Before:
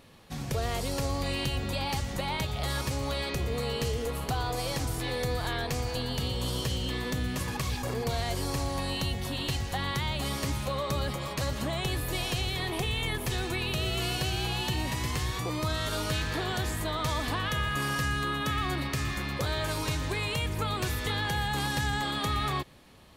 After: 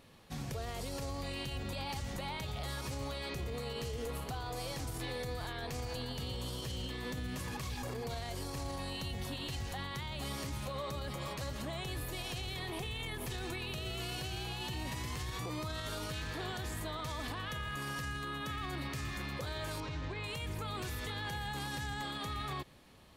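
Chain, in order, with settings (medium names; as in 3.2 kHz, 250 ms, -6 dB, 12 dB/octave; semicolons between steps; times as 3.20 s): peak limiter -26.5 dBFS, peak gain reduction 8 dB; 19.80–20.24 s: distance through air 160 m; trim -4.5 dB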